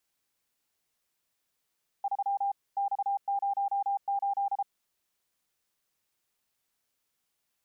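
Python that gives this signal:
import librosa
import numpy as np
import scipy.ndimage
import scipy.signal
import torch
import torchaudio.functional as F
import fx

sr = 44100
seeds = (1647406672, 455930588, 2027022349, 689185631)

y = fx.morse(sr, text='3 X08', wpm=33, hz=798.0, level_db=-26.0)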